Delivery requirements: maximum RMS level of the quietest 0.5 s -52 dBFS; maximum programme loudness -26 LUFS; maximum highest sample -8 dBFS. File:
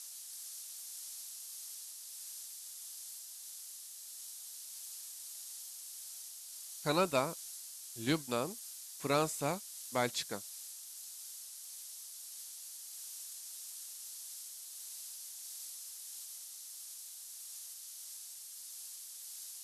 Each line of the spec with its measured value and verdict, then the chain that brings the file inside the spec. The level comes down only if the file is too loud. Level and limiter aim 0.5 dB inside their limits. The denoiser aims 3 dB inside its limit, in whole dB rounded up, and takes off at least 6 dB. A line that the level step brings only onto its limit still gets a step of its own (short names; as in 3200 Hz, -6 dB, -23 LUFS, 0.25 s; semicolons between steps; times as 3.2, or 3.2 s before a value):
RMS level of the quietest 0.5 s -49 dBFS: fail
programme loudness -41.0 LUFS: OK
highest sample -19.5 dBFS: OK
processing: denoiser 6 dB, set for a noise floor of -49 dBFS